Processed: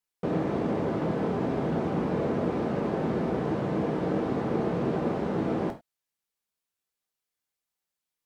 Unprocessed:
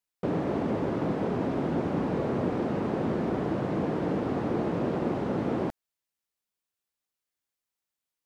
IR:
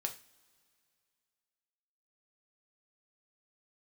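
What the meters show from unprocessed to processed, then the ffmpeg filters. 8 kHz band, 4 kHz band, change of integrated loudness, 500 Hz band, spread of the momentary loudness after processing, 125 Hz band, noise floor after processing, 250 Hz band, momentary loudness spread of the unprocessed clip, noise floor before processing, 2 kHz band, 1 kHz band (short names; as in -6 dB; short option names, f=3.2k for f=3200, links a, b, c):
n/a, +0.5 dB, +0.5 dB, +1.0 dB, 1 LU, +1.0 dB, under -85 dBFS, 0.0 dB, 1 LU, under -85 dBFS, +0.5 dB, +1.0 dB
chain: -filter_complex "[1:a]atrim=start_sample=2205,atrim=end_sample=4410,asetrate=40131,aresample=44100[a];[0:a][a]afir=irnorm=-1:irlink=0"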